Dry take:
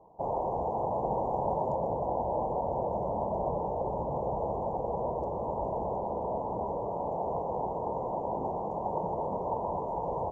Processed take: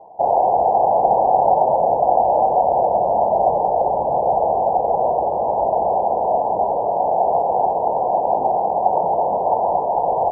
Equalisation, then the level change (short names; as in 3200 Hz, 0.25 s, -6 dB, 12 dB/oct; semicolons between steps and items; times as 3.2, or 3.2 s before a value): synth low-pass 750 Hz, resonance Q 4.9; low shelf 180 Hz -8 dB; +6.5 dB